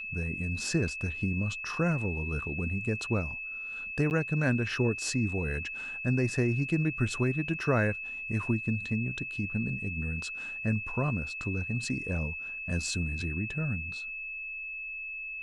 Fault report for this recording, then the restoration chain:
tone 2600 Hz -36 dBFS
4.1–4.11 gap 9.6 ms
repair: notch 2600 Hz, Q 30; interpolate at 4.1, 9.6 ms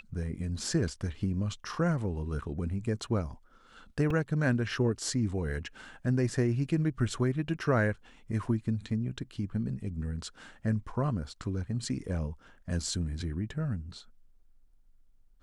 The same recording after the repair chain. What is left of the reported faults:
none

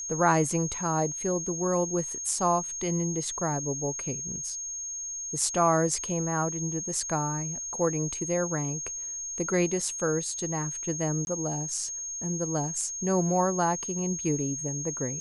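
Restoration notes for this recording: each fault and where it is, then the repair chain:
tone 6500 Hz -33 dBFS
11.25–11.27 gap 21 ms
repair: notch 6500 Hz, Q 30; interpolate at 11.25, 21 ms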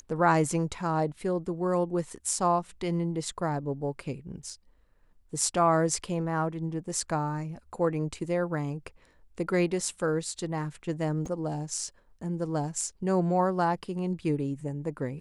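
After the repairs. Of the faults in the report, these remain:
none

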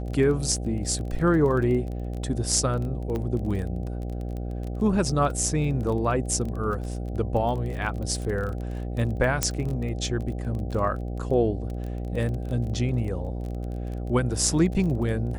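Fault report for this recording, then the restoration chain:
buzz 60 Hz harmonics 13 -31 dBFS
crackle 24/s -32 dBFS
3.16 pop -19 dBFS
9.43 pop -6 dBFS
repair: de-click; de-hum 60 Hz, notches 13

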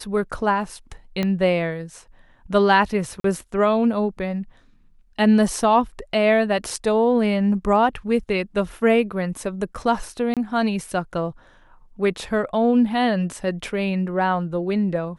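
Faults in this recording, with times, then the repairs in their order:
1.23 pop -11 dBFS
3.2–3.24 gap 43 ms
10.34–10.37 gap 27 ms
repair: de-click; interpolate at 3.2, 43 ms; interpolate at 10.34, 27 ms

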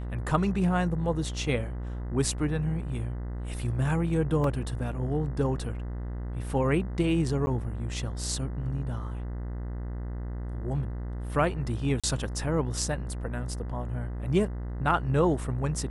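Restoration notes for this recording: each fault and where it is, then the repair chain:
buzz 60 Hz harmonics 34 -34 dBFS
4.44 gap 2.5 ms
7.46–7.47 gap 10 ms
12–12.04 gap 36 ms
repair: de-hum 60 Hz, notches 34; interpolate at 4.44, 2.5 ms; interpolate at 7.46, 10 ms; interpolate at 12, 36 ms

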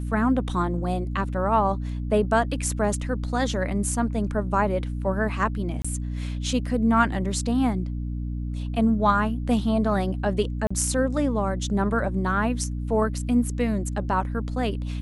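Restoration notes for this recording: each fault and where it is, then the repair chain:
hum 60 Hz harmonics 5 -29 dBFS
5.82–5.84 gap 25 ms
10.67–10.71 gap 35 ms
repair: de-hum 60 Hz, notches 5; interpolate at 5.82, 25 ms; interpolate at 10.67, 35 ms

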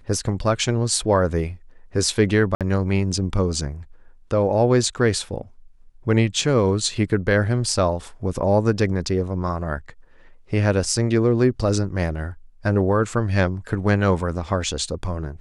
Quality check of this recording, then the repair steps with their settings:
2.55–2.61 gap 57 ms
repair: interpolate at 2.55, 57 ms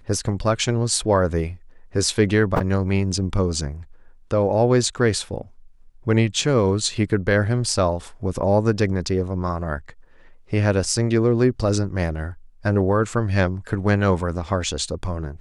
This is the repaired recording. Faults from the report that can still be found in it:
none

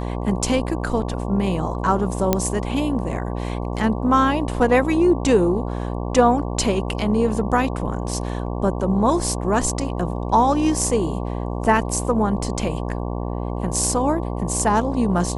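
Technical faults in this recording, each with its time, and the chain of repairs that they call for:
buzz 60 Hz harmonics 19 -26 dBFS
2.33 pop -3 dBFS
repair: de-click; de-hum 60 Hz, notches 19

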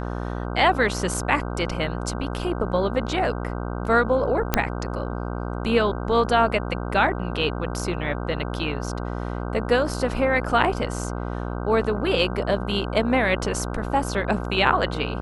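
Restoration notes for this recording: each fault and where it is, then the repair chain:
buzz 60 Hz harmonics 26 -29 dBFS
4.54 pop -3 dBFS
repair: de-click; de-hum 60 Hz, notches 26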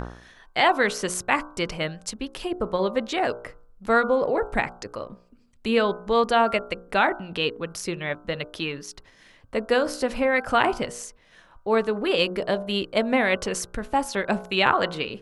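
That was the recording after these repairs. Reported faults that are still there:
none

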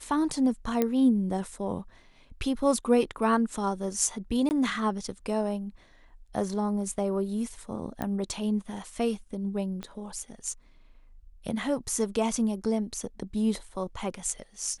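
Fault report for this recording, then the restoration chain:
0.82 pop -12 dBFS
4.49–4.51 gap 19 ms
8.02 pop -18 dBFS
9.83 pop -23 dBFS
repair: de-click; interpolate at 4.49, 19 ms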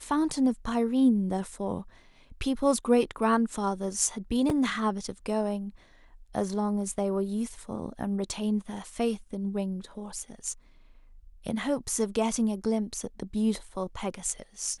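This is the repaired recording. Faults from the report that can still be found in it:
9.83 pop

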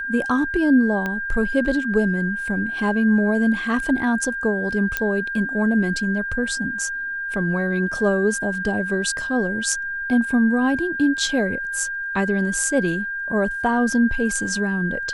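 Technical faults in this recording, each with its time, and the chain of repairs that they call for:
tone 1600 Hz -25 dBFS
1.06 pop -13 dBFS
4.97 pop -7 dBFS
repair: de-click; notch 1600 Hz, Q 30

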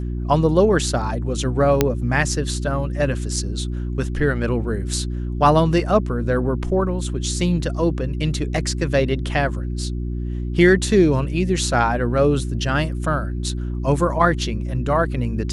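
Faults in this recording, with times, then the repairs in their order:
hum 60 Hz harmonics 6 -25 dBFS
1.81 pop -1 dBFS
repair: de-click; de-hum 60 Hz, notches 6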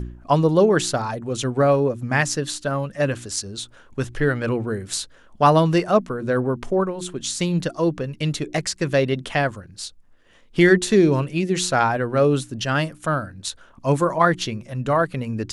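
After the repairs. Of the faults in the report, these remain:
none

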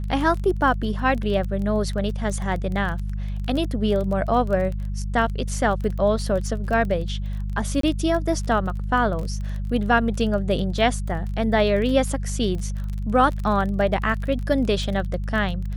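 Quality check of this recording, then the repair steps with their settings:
crackle 24/s -28 dBFS
hum 50 Hz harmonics 4 -27 dBFS
7.81–7.83 gap 23 ms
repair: de-click; de-hum 50 Hz, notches 4; interpolate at 7.81, 23 ms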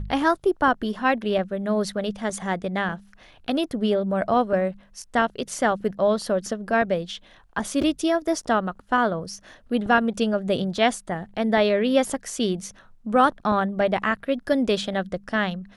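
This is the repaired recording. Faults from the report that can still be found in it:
none

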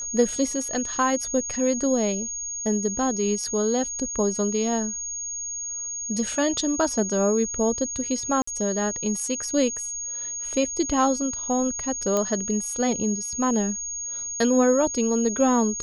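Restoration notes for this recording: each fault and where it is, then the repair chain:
tone 6600 Hz -29 dBFS
8.42–8.47 gap 54 ms
12.17 pop -11 dBFS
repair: de-click; notch 6600 Hz, Q 30; interpolate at 8.42, 54 ms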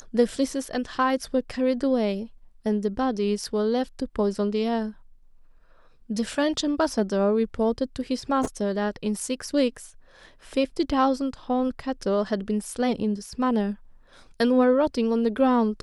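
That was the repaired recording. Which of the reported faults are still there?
12.17 pop

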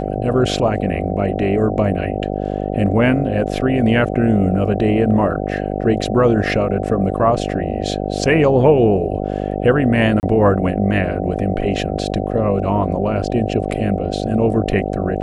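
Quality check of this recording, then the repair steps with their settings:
buzz 50 Hz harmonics 15 -22 dBFS
10.2–10.23 gap 29 ms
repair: de-hum 50 Hz, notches 15; interpolate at 10.2, 29 ms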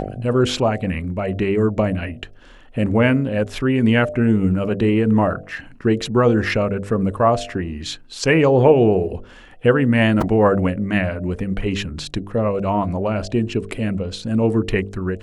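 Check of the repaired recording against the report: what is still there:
none

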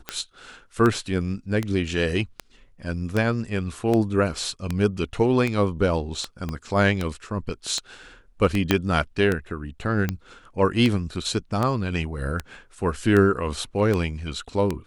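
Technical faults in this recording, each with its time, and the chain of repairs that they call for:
tick 78 rpm -11 dBFS
6.49 pop -17 dBFS
8.71 pop -4 dBFS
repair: de-click

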